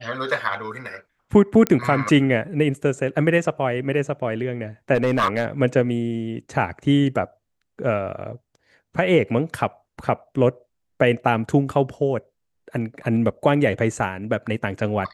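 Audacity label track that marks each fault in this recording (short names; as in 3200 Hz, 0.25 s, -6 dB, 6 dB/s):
1.670000	1.670000	pop -6 dBFS
4.940000	5.450000	clipped -14 dBFS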